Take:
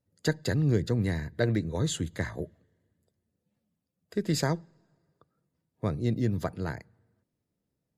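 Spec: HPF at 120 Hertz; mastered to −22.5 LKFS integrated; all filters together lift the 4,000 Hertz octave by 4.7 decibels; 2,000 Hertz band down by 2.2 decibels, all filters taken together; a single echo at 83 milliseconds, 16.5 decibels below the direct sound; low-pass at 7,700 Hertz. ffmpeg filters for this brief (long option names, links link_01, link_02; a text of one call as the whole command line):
ffmpeg -i in.wav -af "highpass=120,lowpass=7700,equalizer=frequency=2000:width_type=o:gain=-4,equalizer=frequency=4000:width_type=o:gain=7,aecho=1:1:83:0.15,volume=8.5dB" out.wav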